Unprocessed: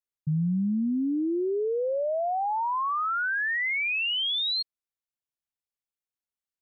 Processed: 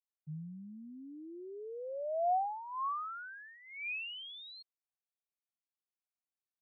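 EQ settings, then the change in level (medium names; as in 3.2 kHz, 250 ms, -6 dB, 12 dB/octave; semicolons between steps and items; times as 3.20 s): vowel filter a; peaking EQ 150 Hz +14 dB 0.57 oct; -1.5 dB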